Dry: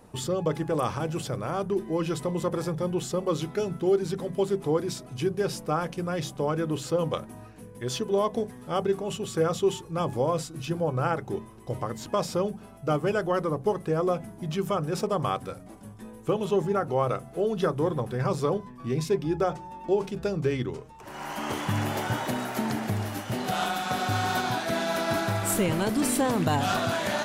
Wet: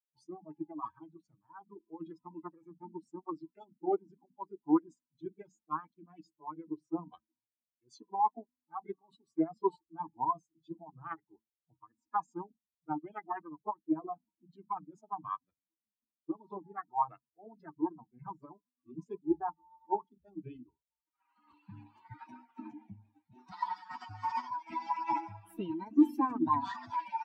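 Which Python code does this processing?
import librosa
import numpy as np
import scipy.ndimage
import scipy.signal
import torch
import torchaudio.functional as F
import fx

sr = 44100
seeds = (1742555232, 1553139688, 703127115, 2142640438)

y = fx.bin_expand(x, sr, power=3.0)
y = fx.formant_shift(y, sr, semitones=5)
y = fx.double_bandpass(y, sr, hz=540.0, octaves=1.6)
y = fx.band_widen(y, sr, depth_pct=40)
y = F.gain(torch.from_numpy(y), 8.5).numpy()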